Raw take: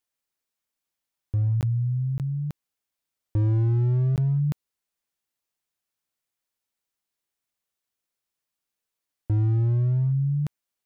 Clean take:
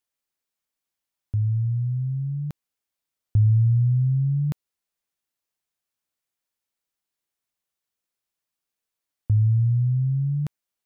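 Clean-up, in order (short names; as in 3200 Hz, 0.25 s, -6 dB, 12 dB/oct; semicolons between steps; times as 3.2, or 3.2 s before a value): clip repair -19.5 dBFS; interpolate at 1.61/2.18/4.16, 18 ms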